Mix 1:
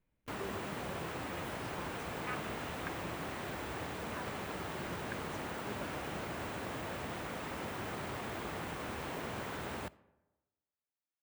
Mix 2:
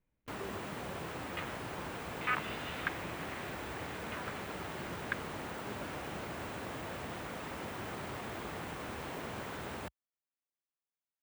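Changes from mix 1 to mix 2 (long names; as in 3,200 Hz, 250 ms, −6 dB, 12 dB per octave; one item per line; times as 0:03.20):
speech: add moving average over 5 samples
second sound +10.5 dB
reverb: off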